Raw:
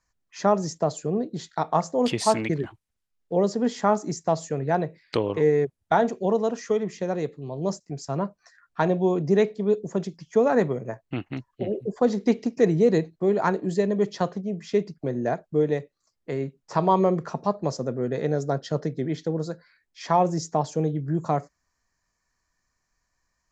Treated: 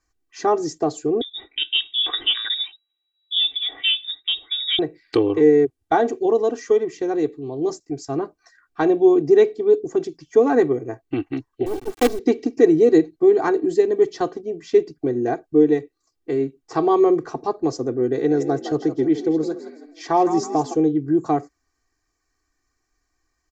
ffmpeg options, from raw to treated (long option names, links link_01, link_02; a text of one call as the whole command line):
ffmpeg -i in.wav -filter_complex "[0:a]asettb=1/sr,asplit=3[link_01][link_02][link_03];[link_01]atrim=end=1.214[link_04];[link_02]atrim=start=1.21:end=4.79,asetpts=PTS-STARTPTS,afade=type=in:duration=0.004:curve=qsin,afade=type=out:start_time=3.576:duration=0.004:curve=qsin,lowpass=frequency=3300:width_type=q:width=0.5098,lowpass=frequency=3300:width_type=q:width=0.6013,lowpass=frequency=3300:width_type=q:width=0.9,lowpass=frequency=3300:width_type=q:width=2.563,afreqshift=-3900[link_05];[link_03]atrim=start=4.786[link_06];[link_04][link_05]acrossfade=duration=0.004:curve1=hsin:curve2=qsin[link_07];[link_07][link_06]acrossfade=duration=0.004:curve1=qsin:curve2=hsin,asettb=1/sr,asplit=3[link_08][link_09][link_10];[link_08]atrim=end=11.664[link_11];[link_09]atrim=start=11.66:end=12.19,asetpts=PTS-STARTPTS,afade=type=in:duration=0.004:curve=qsin,afade=type=out:start_time=0.526:duration=0.004:curve=qsin,acrusher=bits=4:dc=4:mix=0:aa=0.000001[link_12];[link_10]atrim=start=12.186[link_13];[link_11][link_12]acrossfade=duration=0.004:curve1=hsin:curve2=qsin[link_14];[link_14][link_13]acrossfade=duration=0.004:curve1=qsin:curve2=hsin,asplit=3[link_15][link_16][link_17];[link_15]afade=type=out:start_time=18.29:duration=0.02[link_18];[link_16]asplit=5[link_19][link_20][link_21][link_22][link_23];[link_20]adelay=162,afreqshift=45,volume=-10dB[link_24];[link_21]adelay=324,afreqshift=90,volume=-18.6dB[link_25];[link_22]adelay=486,afreqshift=135,volume=-27.3dB[link_26];[link_23]adelay=648,afreqshift=180,volume=-35.9dB[link_27];[link_19][link_24][link_25][link_26][link_27]amix=inputs=5:normalize=0,afade=type=in:start_time=18.29:duration=0.02,afade=type=out:start_time=20.73:duration=0.02[link_28];[link_17]afade=type=in:start_time=20.73:duration=0.02[link_29];[link_18][link_28][link_29]amix=inputs=3:normalize=0,equalizer=frequency=300:width=2:gain=10,aecho=1:1:2.6:0.94,volume=-1.5dB" out.wav